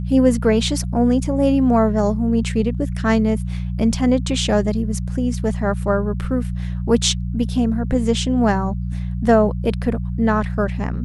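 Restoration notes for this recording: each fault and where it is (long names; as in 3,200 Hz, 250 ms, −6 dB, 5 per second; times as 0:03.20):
mains hum 60 Hz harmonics 3 −24 dBFS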